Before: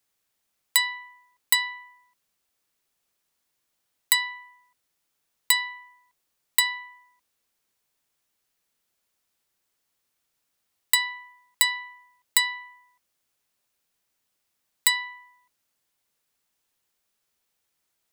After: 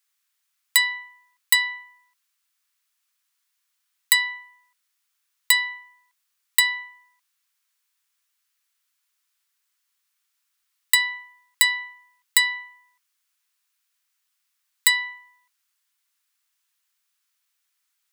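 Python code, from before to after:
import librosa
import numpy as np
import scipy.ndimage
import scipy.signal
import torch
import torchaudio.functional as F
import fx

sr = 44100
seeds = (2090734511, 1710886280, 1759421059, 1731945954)

y = scipy.signal.sosfilt(scipy.signal.butter(4, 1100.0, 'highpass', fs=sr, output='sos'), x)
y = fx.dynamic_eq(y, sr, hz=1500.0, q=1.6, threshold_db=-41.0, ratio=4.0, max_db=6)
y = y * 10.0 ** (2.0 / 20.0)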